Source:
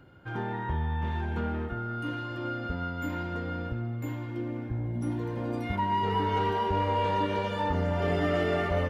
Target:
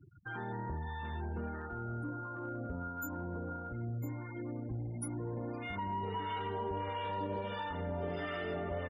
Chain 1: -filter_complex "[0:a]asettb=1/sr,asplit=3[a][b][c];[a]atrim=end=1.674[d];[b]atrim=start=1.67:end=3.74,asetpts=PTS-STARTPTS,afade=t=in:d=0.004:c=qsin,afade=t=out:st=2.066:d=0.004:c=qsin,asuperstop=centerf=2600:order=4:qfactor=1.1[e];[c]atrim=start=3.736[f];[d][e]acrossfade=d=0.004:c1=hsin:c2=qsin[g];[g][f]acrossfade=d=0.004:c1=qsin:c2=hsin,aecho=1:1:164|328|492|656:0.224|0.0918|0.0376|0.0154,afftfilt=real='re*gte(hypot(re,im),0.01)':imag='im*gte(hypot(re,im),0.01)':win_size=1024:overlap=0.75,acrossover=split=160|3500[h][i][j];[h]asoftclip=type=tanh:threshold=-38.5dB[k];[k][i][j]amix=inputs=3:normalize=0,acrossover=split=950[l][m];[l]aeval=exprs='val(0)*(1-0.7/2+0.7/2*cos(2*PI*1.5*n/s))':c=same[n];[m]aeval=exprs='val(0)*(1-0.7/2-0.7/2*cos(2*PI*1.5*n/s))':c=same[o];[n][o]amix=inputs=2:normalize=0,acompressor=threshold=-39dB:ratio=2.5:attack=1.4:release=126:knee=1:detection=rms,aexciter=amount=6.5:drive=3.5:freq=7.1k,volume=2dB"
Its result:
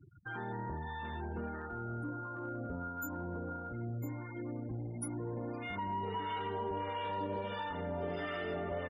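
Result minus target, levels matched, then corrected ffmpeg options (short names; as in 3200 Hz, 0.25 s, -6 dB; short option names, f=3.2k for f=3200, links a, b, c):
soft clip: distortion +8 dB
-filter_complex "[0:a]asettb=1/sr,asplit=3[a][b][c];[a]atrim=end=1.674[d];[b]atrim=start=1.67:end=3.74,asetpts=PTS-STARTPTS,afade=t=in:d=0.004:c=qsin,afade=t=out:st=2.066:d=0.004:c=qsin,asuperstop=centerf=2600:order=4:qfactor=1.1[e];[c]atrim=start=3.736[f];[d][e]acrossfade=d=0.004:c1=hsin:c2=qsin[g];[g][f]acrossfade=d=0.004:c1=qsin:c2=hsin,aecho=1:1:164|328|492|656:0.224|0.0918|0.0376|0.0154,afftfilt=real='re*gte(hypot(re,im),0.01)':imag='im*gte(hypot(re,im),0.01)':win_size=1024:overlap=0.75,acrossover=split=160|3500[h][i][j];[h]asoftclip=type=tanh:threshold=-30dB[k];[k][i][j]amix=inputs=3:normalize=0,acrossover=split=950[l][m];[l]aeval=exprs='val(0)*(1-0.7/2+0.7/2*cos(2*PI*1.5*n/s))':c=same[n];[m]aeval=exprs='val(0)*(1-0.7/2-0.7/2*cos(2*PI*1.5*n/s))':c=same[o];[n][o]amix=inputs=2:normalize=0,acompressor=threshold=-39dB:ratio=2.5:attack=1.4:release=126:knee=1:detection=rms,aexciter=amount=6.5:drive=3.5:freq=7.1k,volume=2dB"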